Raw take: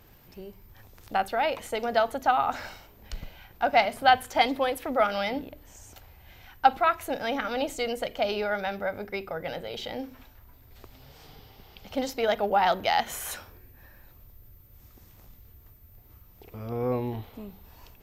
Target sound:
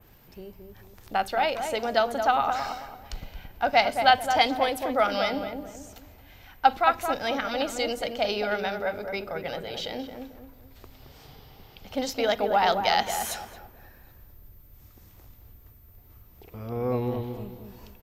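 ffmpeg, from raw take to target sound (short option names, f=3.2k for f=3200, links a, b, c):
-filter_complex "[0:a]asplit=2[a][b];[b]adelay=221,lowpass=f=1.1k:p=1,volume=-5dB,asplit=2[c][d];[d]adelay=221,lowpass=f=1.1k:p=1,volume=0.39,asplit=2[e][f];[f]adelay=221,lowpass=f=1.1k:p=1,volume=0.39,asplit=2[g][h];[h]adelay=221,lowpass=f=1.1k:p=1,volume=0.39,asplit=2[i][j];[j]adelay=221,lowpass=f=1.1k:p=1,volume=0.39[k];[c][e][g][i][k]amix=inputs=5:normalize=0[l];[a][l]amix=inputs=2:normalize=0,adynamicequalizer=threshold=0.00501:dfrequency=5000:dqfactor=0.92:tfrequency=5000:tqfactor=0.92:attack=5:release=100:ratio=0.375:range=3:mode=boostabove:tftype=bell"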